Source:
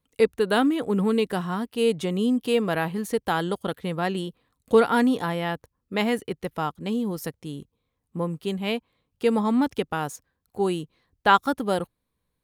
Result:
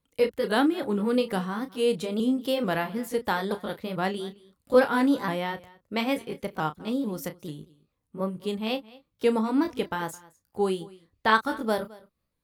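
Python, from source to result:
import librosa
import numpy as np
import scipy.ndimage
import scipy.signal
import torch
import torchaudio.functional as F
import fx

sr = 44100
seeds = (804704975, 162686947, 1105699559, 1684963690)

p1 = fx.pitch_ramps(x, sr, semitones=2.5, every_ms=440)
p2 = fx.doubler(p1, sr, ms=32.0, db=-11.0)
p3 = p2 + fx.echo_single(p2, sr, ms=215, db=-21.5, dry=0)
y = p3 * 10.0 ** (-1.5 / 20.0)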